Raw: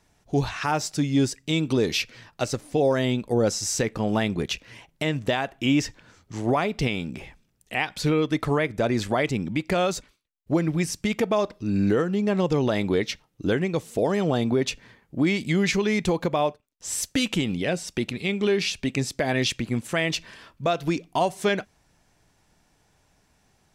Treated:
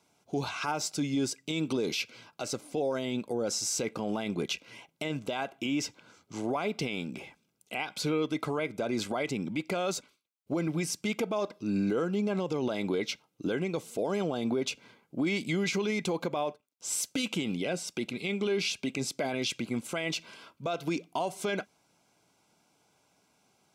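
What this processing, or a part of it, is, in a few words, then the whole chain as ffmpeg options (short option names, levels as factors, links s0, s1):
PA system with an anti-feedback notch: -af "highpass=190,asuperstop=centerf=1800:order=20:qfactor=6.2,alimiter=limit=0.112:level=0:latency=1:release=34,volume=0.75"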